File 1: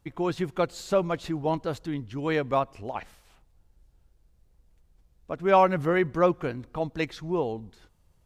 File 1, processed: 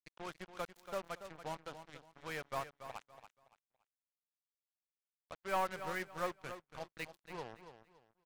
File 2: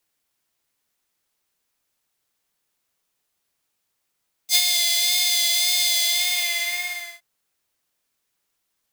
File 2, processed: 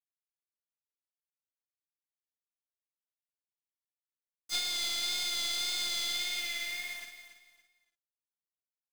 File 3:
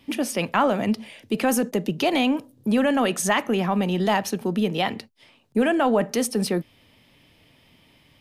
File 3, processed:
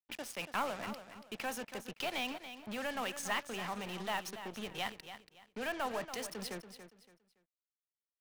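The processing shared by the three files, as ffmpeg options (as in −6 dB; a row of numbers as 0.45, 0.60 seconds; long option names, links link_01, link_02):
-filter_complex "[0:a]acrossover=split=6800[link_01][link_02];[link_02]acompressor=threshold=-33dB:ratio=4:attack=1:release=60[link_03];[link_01][link_03]amix=inputs=2:normalize=0,equalizer=frequency=270:width=0.57:gain=-14.5,acrossover=split=160|690|4600[link_04][link_05][link_06][link_07];[link_07]aeval=exprs='sgn(val(0))*max(abs(val(0))-0.00841,0)':channel_layout=same[link_08];[link_04][link_05][link_06][link_08]amix=inputs=4:normalize=0,aeval=exprs='(tanh(6.31*val(0)+0.5)-tanh(0.5))/6.31':channel_layout=same,acrusher=bits=5:mix=0:aa=0.5,aecho=1:1:283|566|849:0.282|0.0789|0.0221,volume=-8dB"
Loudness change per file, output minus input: −16.5, −13.0, −16.5 LU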